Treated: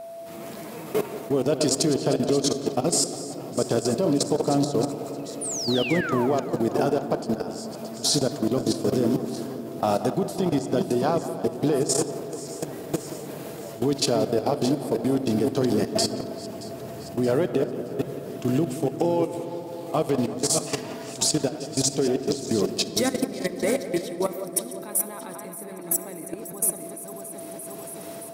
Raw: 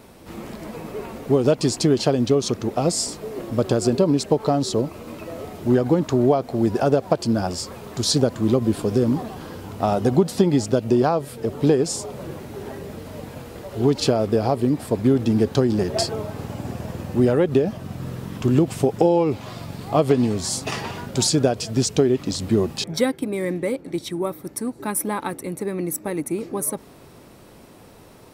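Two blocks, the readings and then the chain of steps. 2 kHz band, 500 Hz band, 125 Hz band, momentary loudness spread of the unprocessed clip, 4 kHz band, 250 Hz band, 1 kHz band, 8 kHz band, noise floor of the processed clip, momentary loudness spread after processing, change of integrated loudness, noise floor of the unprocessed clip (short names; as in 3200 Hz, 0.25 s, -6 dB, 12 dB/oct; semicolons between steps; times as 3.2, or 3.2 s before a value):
-1.5 dB, -3.5 dB, -7.0 dB, 16 LU, -0.5 dB, -4.0 dB, -3.0 dB, +2.0 dB, -38 dBFS, 13 LU, -3.5 dB, -46 dBFS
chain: regenerating reverse delay 0.312 s, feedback 63%, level -7.5 dB; HPF 150 Hz 12 dB/oct; high shelf 6100 Hz +9.5 dB; AGC gain up to 16 dB; added harmonics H 4 -41 dB, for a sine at -0.5 dBFS; whine 670 Hz -27 dBFS; level quantiser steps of 16 dB; painted sound fall, 5.41–6.27, 800–9900 Hz -25 dBFS; on a send: tape echo 0.177 s, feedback 84%, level -11.5 dB, low-pass 1700 Hz; on the sum: shoebox room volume 3200 m³, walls mixed, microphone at 0.47 m; gain -5.5 dB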